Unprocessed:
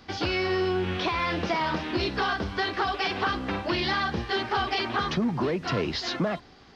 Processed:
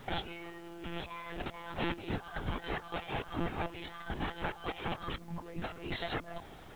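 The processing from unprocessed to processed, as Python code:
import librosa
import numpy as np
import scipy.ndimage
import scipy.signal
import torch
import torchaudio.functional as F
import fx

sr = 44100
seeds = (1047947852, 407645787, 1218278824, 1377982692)

y = fx.peak_eq(x, sr, hz=720.0, db=4.5, octaves=0.3)
y = fx.over_compress(y, sr, threshold_db=-33.0, ratio=-0.5)
y = fx.lpc_monotone(y, sr, seeds[0], pitch_hz=170.0, order=16)
y = fx.dmg_noise_colour(y, sr, seeds[1], colour='pink', level_db=-58.0)
y = F.gain(torch.from_numpy(y), -5.0).numpy()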